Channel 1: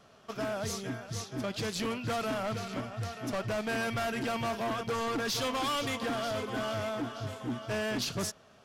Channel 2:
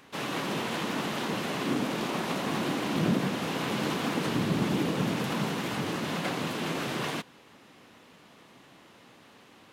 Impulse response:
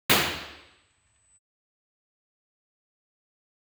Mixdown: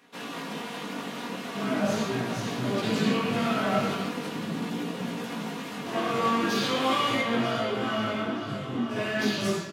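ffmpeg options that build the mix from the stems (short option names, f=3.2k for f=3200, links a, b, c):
-filter_complex "[0:a]aecho=1:1:5.2:0.31,adelay=1200,volume=-2dB,asplit=3[a][b][c];[a]atrim=end=3.93,asetpts=PTS-STARTPTS,afade=t=out:st=3.926:d=0.004:c=hsin[d];[b]atrim=start=3.93:end=5.86,asetpts=PTS-STARTPTS,volume=0[e];[c]atrim=start=5.86,asetpts=PTS-STARTPTS,afade=t=in:d=0.004:c=hsin[f];[d][e][f]concat=n=3:v=0:a=1,asplit=2[g][h];[h]volume=-13dB[i];[1:a]aecho=1:1:4.2:0.49,volume=-2dB[j];[2:a]atrim=start_sample=2205[k];[i][k]afir=irnorm=-1:irlink=0[l];[g][j][l]amix=inputs=3:normalize=0,highpass=120,flanger=delay=17:depth=4.1:speed=0.4"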